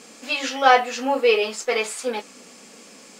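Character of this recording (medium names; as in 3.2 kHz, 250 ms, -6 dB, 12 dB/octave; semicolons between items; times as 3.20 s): noise floor -47 dBFS; spectral tilt -1.0 dB/octave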